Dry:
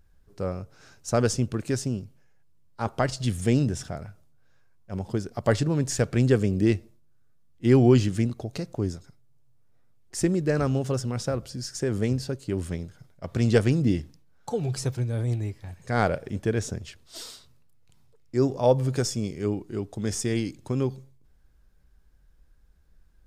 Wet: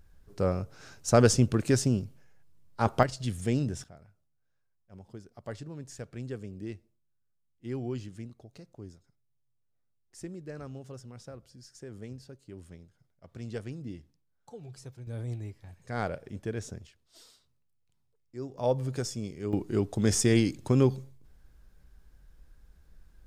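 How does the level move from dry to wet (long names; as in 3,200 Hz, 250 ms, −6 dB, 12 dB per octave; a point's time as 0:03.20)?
+2.5 dB
from 0:03.03 −6 dB
from 0:03.84 −17.5 dB
from 0:15.07 −9 dB
from 0:16.87 −16 dB
from 0:18.58 −7 dB
from 0:19.53 +3.5 dB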